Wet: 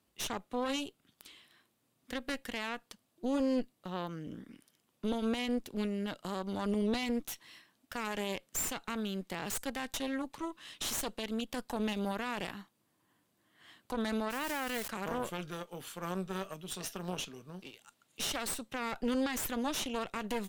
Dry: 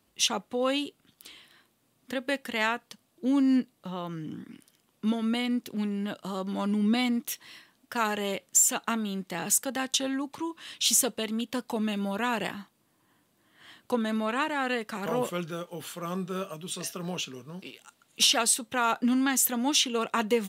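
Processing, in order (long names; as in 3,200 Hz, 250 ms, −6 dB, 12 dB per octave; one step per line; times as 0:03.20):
0:14.30–0:14.88: spike at every zero crossing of −24 dBFS
harmonic generator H 2 −7 dB, 3 −16 dB, 5 −28 dB, 6 −18 dB, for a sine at −11.5 dBFS
brickwall limiter −20 dBFS, peak gain reduction 12.5 dB
level −3.5 dB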